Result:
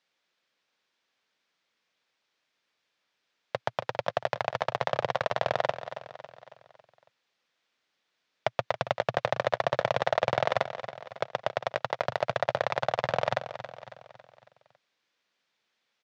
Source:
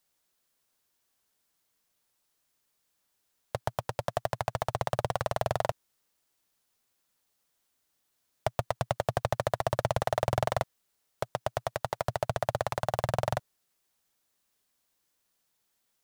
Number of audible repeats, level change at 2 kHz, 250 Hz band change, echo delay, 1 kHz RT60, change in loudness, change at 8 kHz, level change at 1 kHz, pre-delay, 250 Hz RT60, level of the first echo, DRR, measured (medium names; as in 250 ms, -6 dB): 4, +6.0 dB, -2.0 dB, 276 ms, no reverb, +2.0 dB, no reading, +2.0 dB, no reverb, no reverb, -12.0 dB, no reverb